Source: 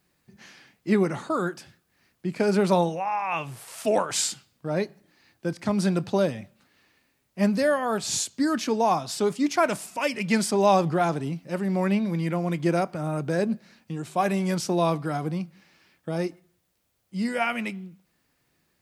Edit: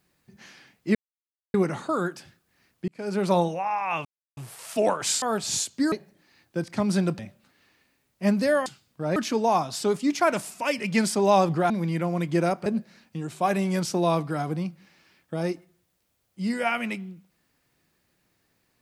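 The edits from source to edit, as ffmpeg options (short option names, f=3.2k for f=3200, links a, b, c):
-filter_complex "[0:a]asplit=11[a][b][c][d][e][f][g][h][i][j][k];[a]atrim=end=0.95,asetpts=PTS-STARTPTS,afade=t=out:st=0.946:d=0.004:c=hsin,apad=pad_dur=0.59[l];[b]atrim=start=0.95:end=2.29,asetpts=PTS-STARTPTS,afade=t=in:d=0.004:c=hsin,afade=t=out:st=1.336:d=0.004:c=hsin[m];[c]atrim=start=2.29:end=3.46,asetpts=PTS-STARTPTS,afade=t=in:d=0.5,afade=t=out:st=1.166:d=0.004:c=hsin,apad=pad_dur=0.32[n];[d]atrim=start=3.46:end=4.312,asetpts=PTS-STARTPTS,afade=t=in:d=0.004:c=hsin[o];[e]atrim=start=7.818:end=8.522[p];[f]atrim=start=4.808:end=6.082[q];[g]atrim=start=6.348:end=7.822[r];[h]atrim=start=4.308:end=4.812[s];[i]atrim=start=8.518:end=11.062[t];[j]atrim=start=12.008:end=12.972[u];[k]atrim=start=13.408[v];[l][m][n][o]concat=n=4:v=0:a=1[w];[w][p]acrossfade=d=0.004:c1=hsin:c2=hsin[x];[x][q]acrossfade=d=0.004:c1=hsin:c2=hsin[y];[y][r]acrossfade=d=0.004:c1=hsin:c2=hsin[z];[z][s]acrossfade=d=0.004:c1=hsin:c2=hsin[aa];[aa][t]acrossfade=d=0.004:c1=hsin:c2=hsin[ab];[ab][u]acrossfade=d=0.004:c1=hsin:c2=hsin[ac];[ac][v]acrossfade=d=0.004:c1=hsin:c2=hsin"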